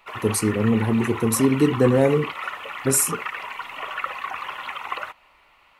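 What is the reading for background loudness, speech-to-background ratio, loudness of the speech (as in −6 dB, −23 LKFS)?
−31.5 LKFS, 11.0 dB, −20.5 LKFS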